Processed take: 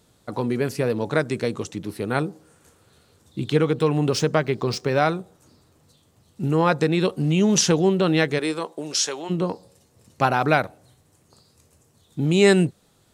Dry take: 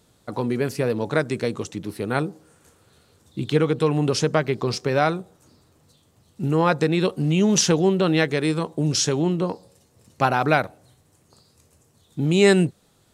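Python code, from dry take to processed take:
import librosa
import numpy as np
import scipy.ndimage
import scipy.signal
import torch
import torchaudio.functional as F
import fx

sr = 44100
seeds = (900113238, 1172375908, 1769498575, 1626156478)

y = fx.median_filter(x, sr, points=3, at=(3.62, 5.19))
y = fx.highpass(y, sr, hz=fx.line((8.38, 280.0), (9.29, 730.0)), slope=12, at=(8.38, 9.29), fade=0.02)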